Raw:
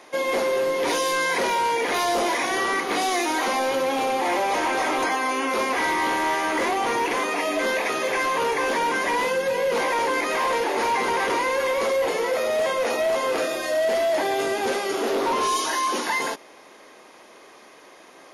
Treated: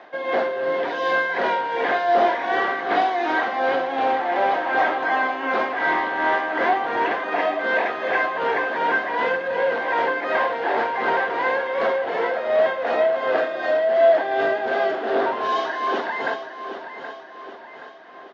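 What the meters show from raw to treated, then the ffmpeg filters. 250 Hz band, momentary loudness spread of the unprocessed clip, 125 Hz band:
−2.0 dB, 2 LU, can't be measured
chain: -af "highpass=100,equalizer=frequency=700:width_type=q:width=4:gain=10,equalizer=frequency=1600:width_type=q:width=4:gain=9,equalizer=frequency=2400:width_type=q:width=4:gain=-5,lowpass=frequency=3600:width=0.5412,lowpass=frequency=3600:width=1.3066,tremolo=f=2.7:d=0.54,aecho=1:1:774|1548|2322|3096|3870:0.299|0.143|0.0688|0.033|0.0158"

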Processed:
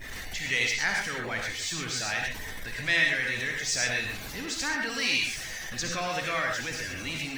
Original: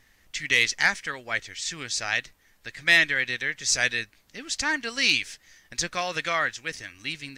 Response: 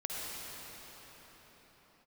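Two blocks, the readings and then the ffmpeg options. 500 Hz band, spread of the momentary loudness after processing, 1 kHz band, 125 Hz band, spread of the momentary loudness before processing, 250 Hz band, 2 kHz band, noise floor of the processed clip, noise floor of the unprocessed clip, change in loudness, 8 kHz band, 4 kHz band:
−1.0 dB, 9 LU, −2.0 dB, +3.5 dB, 15 LU, +0.5 dB, −3.0 dB, −38 dBFS, −62 dBFS, −3.5 dB, −2.0 dB, −3.0 dB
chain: -filter_complex "[0:a]aeval=exprs='val(0)+0.5*0.0631*sgn(val(0))':channel_layout=same[link_01];[1:a]atrim=start_sample=2205,afade=type=out:start_time=0.19:duration=0.01,atrim=end_sample=8820[link_02];[link_01][link_02]afir=irnorm=-1:irlink=0,afftdn=noise_reduction=17:noise_floor=-38,volume=-6dB"

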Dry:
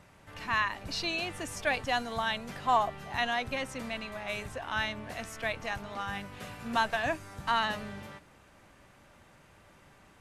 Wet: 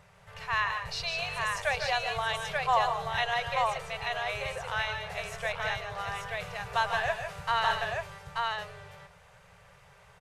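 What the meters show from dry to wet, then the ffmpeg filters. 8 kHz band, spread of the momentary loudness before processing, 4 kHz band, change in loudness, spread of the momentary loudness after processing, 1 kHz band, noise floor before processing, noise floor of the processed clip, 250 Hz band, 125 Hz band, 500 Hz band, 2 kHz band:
+1.0 dB, 12 LU, +2.0 dB, +2.0 dB, 9 LU, +2.5 dB, −59 dBFS, −58 dBFS, −12.0 dB, +2.0 dB, +2.5 dB, +2.5 dB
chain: -filter_complex "[0:a]afftfilt=real='re*(1-between(b*sr/4096,190,390))':imag='im*(1-between(b*sr/4096,190,390))':win_size=4096:overlap=0.75,highshelf=frequency=11000:gain=-6.5,asplit=2[link_01][link_02];[link_02]aecho=0:1:148|164|883:0.398|0.299|0.708[link_03];[link_01][link_03]amix=inputs=2:normalize=0"

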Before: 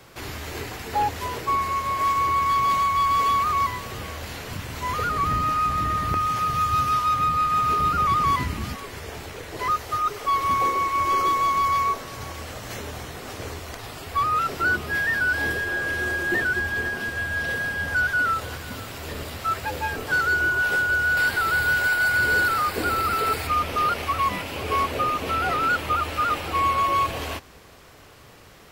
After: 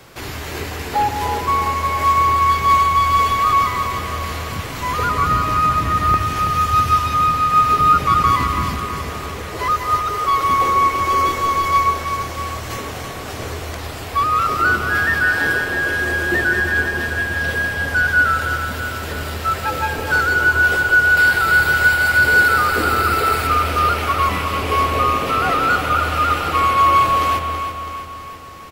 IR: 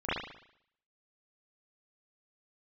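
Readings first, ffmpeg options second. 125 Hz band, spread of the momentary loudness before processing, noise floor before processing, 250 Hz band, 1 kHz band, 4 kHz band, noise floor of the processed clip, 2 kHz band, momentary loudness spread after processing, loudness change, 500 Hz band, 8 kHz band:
+8.0 dB, 14 LU, −47 dBFS, +6.5 dB, +6.5 dB, +6.0 dB, −29 dBFS, +7.0 dB, 14 LU, +6.5 dB, +7.0 dB, +6.0 dB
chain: -filter_complex "[0:a]aecho=1:1:328|656|984|1312|1640|1968|2296:0.355|0.199|0.111|0.0623|0.0349|0.0195|0.0109,asplit=2[link_01][link_02];[1:a]atrim=start_sample=2205,adelay=126[link_03];[link_02][link_03]afir=irnorm=-1:irlink=0,volume=-16dB[link_04];[link_01][link_04]amix=inputs=2:normalize=0,volume=5dB"

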